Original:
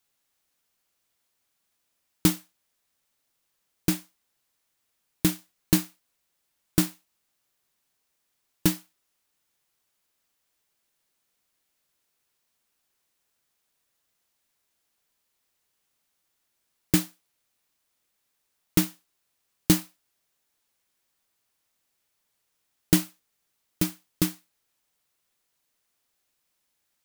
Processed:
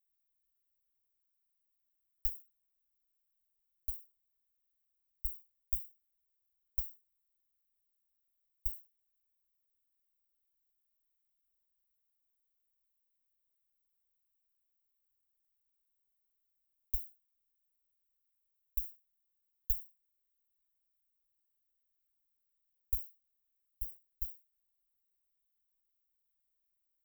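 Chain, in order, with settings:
phase distortion by the signal itself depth 0.12 ms
inverse Chebyshev band-stop filter 180–8,400 Hz, stop band 60 dB
level +1 dB

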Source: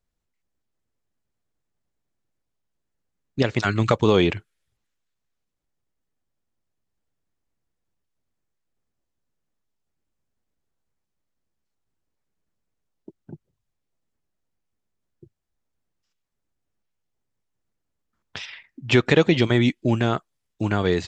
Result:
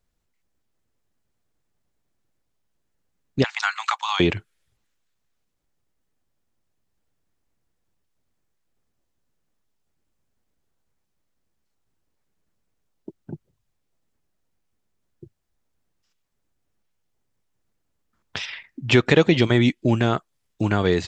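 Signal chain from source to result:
0:03.44–0:04.20: Butterworth high-pass 780 Hz 72 dB per octave
in parallel at −2 dB: downward compressor, threshold −31 dBFS, peak gain reduction 18.5 dB

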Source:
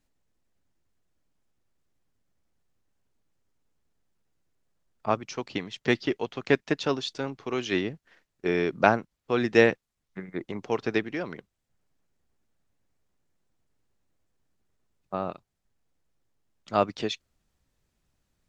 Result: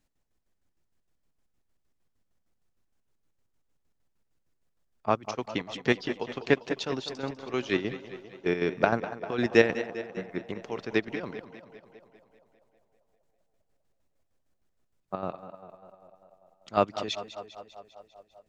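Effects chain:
square-wave tremolo 6.5 Hz, depth 60%, duty 50%
feedback echo with a band-pass in the loop 197 ms, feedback 75%, band-pass 650 Hz, level −13.5 dB
feedback echo with a swinging delay time 199 ms, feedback 60%, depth 63 cents, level −14 dB

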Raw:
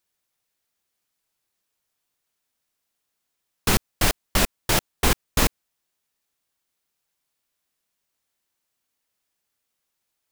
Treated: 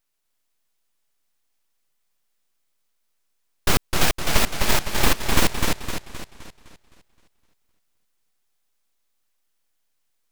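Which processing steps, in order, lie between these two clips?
stylus tracing distortion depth 0.1 ms
full-wave rectification
feedback echo with a swinging delay time 258 ms, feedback 46%, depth 125 cents, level −3.5 dB
level +3 dB

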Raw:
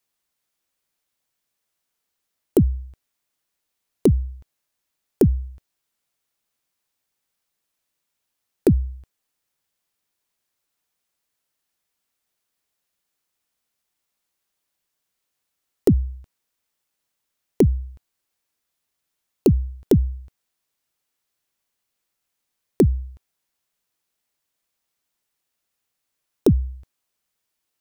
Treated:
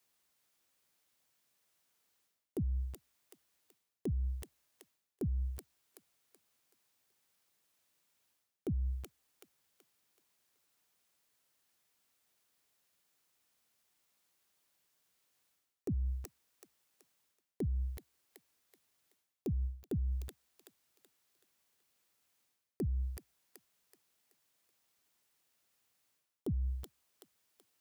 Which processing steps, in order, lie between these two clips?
stylus tracing distortion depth 0.18 ms
delay with a high-pass on its return 378 ms, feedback 38%, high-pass 1,600 Hz, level −16.5 dB
reversed playback
downward compressor 4 to 1, threshold −32 dBFS, peak gain reduction 17.5 dB
reversed playback
high-pass filter 62 Hz
brickwall limiter −31.5 dBFS, peak gain reduction 9.5 dB
level +1.5 dB

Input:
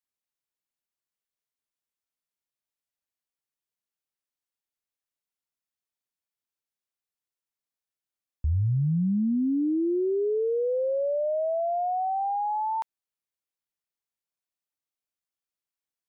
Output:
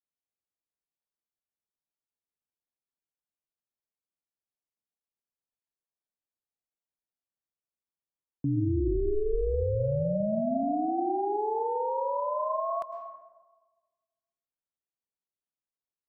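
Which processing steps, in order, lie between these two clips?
ring modulation 210 Hz
dense smooth reverb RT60 1.4 s, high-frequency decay 0.75×, pre-delay 95 ms, DRR 8 dB
low-pass that shuts in the quiet parts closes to 920 Hz, open at −30 dBFS

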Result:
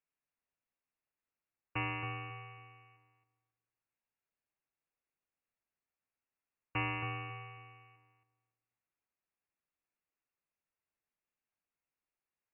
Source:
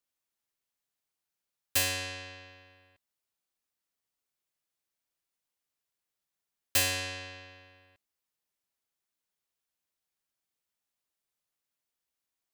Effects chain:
voice inversion scrambler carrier 2,800 Hz
on a send: feedback echo with a low-pass in the loop 273 ms, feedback 23%, low-pass 1,400 Hz, level −6 dB
on the sum: level −3 dB

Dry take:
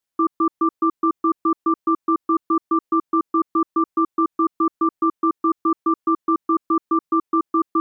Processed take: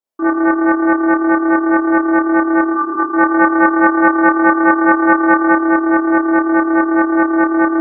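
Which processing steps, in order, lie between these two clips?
flat-topped bell 520 Hz +10.5 dB 2.3 octaves
0:02.65–0:02.97: healed spectral selection 320–860 Hz both
0:03.02–0:05.48: dynamic equaliser 1,200 Hz, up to +5 dB, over −27 dBFS
four-comb reverb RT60 0.86 s, combs from 27 ms, DRR −8.5 dB
highs frequency-modulated by the lows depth 0.24 ms
level −12.5 dB

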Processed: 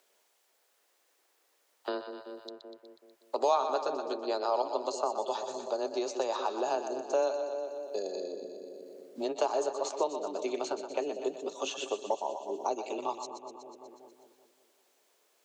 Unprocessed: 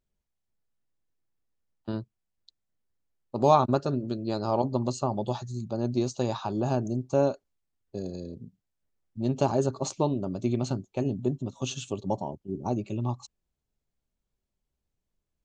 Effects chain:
high-pass filter 410 Hz 24 dB per octave
frequency shifter +16 Hz
echo with a time of its own for lows and highs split 580 Hz, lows 190 ms, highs 122 ms, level −9.5 dB
multiband upward and downward compressor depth 70%

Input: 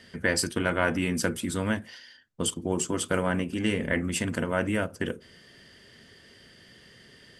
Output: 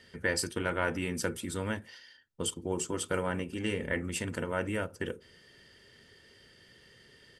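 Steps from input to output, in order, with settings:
comb filter 2.2 ms, depth 31%
level −5.5 dB

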